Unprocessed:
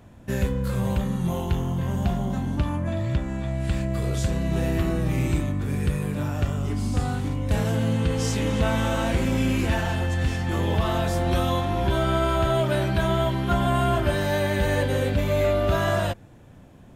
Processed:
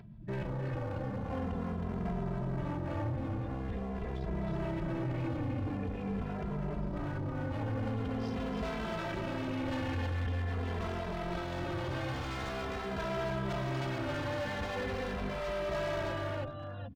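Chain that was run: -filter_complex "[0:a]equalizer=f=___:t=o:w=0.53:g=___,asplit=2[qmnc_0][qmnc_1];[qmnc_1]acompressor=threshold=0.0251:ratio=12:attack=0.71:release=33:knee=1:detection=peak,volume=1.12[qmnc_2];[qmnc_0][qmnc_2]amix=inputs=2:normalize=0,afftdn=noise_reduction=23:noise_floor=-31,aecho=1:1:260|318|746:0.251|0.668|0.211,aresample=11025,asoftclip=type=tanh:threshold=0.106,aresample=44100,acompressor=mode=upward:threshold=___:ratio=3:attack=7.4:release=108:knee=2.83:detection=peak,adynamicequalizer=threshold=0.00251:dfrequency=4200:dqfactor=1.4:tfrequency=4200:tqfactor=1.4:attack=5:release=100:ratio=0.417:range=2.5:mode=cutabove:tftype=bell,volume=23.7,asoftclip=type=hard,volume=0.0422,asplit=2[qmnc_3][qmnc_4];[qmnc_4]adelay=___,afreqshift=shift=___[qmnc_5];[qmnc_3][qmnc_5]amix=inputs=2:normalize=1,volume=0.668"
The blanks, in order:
67, -6.5, 0.0158, 2.6, -0.45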